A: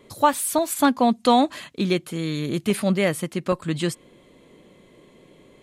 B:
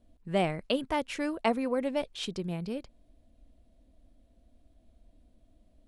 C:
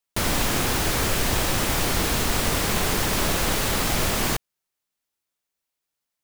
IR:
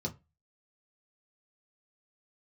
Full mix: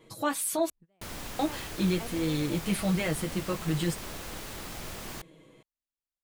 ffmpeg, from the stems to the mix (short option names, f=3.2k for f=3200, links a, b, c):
-filter_complex "[0:a]aecho=1:1:6.2:0.74,alimiter=limit=-14dB:level=0:latency=1:release=15,flanger=delay=8.5:depth=6.4:regen=-31:speed=0.44:shape=triangular,volume=-2.5dB,asplit=3[a][b][c];[a]atrim=end=0.7,asetpts=PTS-STARTPTS,afade=t=out:st=0.696:d=0.004:c=hsin[d];[b]atrim=start=0.7:end=1.39,asetpts=PTS-STARTPTS,volume=0[e];[c]atrim=start=1.39,asetpts=PTS-STARTPTS,afade=t=in:d=0.004:c=hsin[f];[d][e][f]concat=n=3:v=0:a=1,asplit=2[g][h];[1:a]adelay=550,volume=-16dB[i];[2:a]adelay=850,volume=-17dB[j];[h]apad=whole_len=283498[k];[i][k]sidechaingate=range=-30dB:threshold=-49dB:ratio=16:detection=peak[l];[g][l][j]amix=inputs=3:normalize=0"